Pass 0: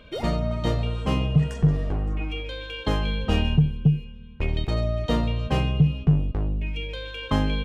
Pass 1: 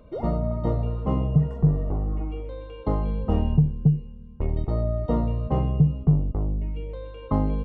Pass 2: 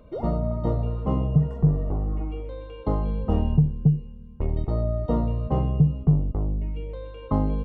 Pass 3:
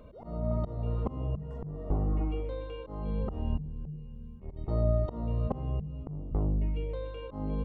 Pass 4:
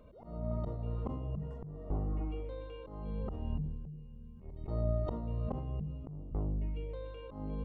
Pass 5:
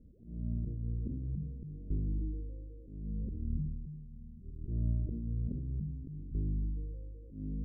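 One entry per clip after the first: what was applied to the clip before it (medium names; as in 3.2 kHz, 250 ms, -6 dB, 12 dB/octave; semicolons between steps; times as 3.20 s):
Savitzky-Golay filter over 65 samples
dynamic bell 2.1 kHz, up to -4 dB, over -52 dBFS, Q 2.3
slow attack 382 ms; de-hum 48.91 Hz, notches 5
decay stretcher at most 35 dB/s; trim -6.5 dB
inverse Chebyshev low-pass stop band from 850 Hz, stop band 50 dB; trim +1 dB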